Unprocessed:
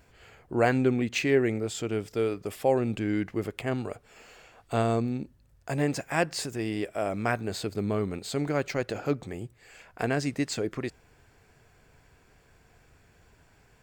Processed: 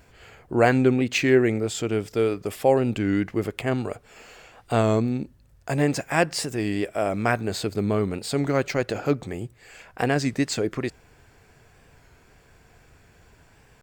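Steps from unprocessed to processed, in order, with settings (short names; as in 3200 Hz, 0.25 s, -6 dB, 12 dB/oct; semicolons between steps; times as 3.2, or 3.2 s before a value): record warp 33 1/3 rpm, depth 100 cents; gain +5 dB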